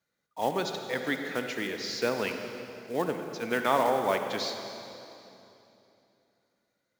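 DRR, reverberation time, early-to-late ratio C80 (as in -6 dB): 5.0 dB, 2.9 s, 6.0 dB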